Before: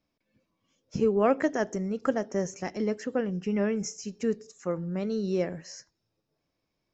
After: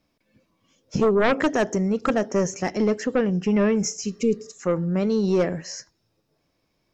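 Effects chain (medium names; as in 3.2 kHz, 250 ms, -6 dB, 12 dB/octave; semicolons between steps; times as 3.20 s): sine folder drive 9 dB, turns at -10.5 dBFS; spectral replace 4.08–4.46 s, 550–2100 Hz after; trim -4 dB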